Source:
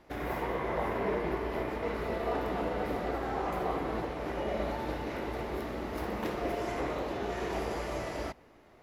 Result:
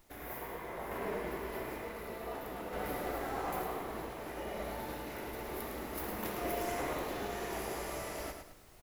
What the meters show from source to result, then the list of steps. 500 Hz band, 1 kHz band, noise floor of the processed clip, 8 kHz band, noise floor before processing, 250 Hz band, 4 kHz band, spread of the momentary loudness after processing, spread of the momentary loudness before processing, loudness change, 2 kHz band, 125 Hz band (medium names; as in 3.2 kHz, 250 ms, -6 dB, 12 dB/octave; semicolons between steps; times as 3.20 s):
-6.0 dB, -5.0 dB, -55 dBFS, +6.0 dB, -58 dBFS, -6.5 dB, -2.0 dB, 6 LU, 4 LU, -5.0 dB, -3.5 dB, -7.5 dB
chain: peaking EQ 5 kHz -10.5 dB 2.6 oct; added noise brown -54 dBFS; random-step tremolo 1.1 Hz; pre-emphasis filter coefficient 0.9; feedback delay 107 ms, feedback 36%, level -6.5 dB; trim +14.5 dB